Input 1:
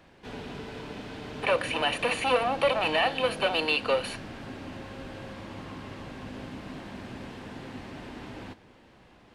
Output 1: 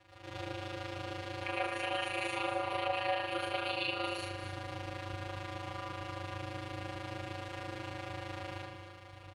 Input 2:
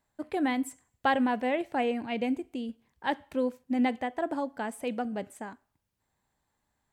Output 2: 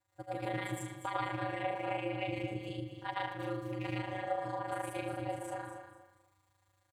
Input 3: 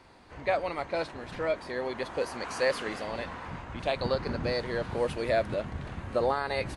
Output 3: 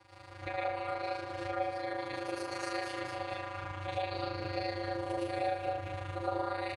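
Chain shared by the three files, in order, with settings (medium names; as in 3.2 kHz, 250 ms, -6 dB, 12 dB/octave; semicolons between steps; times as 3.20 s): rattle on loud lows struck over -29 dBFS, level -26 dBFS; peaking EQ 140 Hz -13 dB 0.89 oct; algorithmic reverb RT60 0.68 s, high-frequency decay 0.7×, pre-delay 65 ms, DRR -9.5 dB; robot voice 218 Hz; compression 2.5:1, threshold -34 dBFS; feedback delay 240 ms, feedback 26%, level -10 dB; ring modulator 96 Hz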